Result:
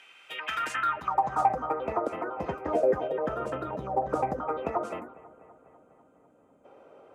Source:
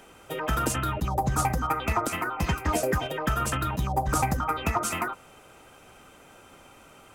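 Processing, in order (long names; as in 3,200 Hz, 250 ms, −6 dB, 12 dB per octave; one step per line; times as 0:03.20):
gain on a spectral selection 0:05.00–0:06.65, 320–6,200 Hz −13 dB
band-pass filter sweep 2,600 Hz → 510 Hz, 0:00.45–0:01.74
bucket-brigade delay 248 ms, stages 4,096, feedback 67%, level −20 dB
level +6.5 dB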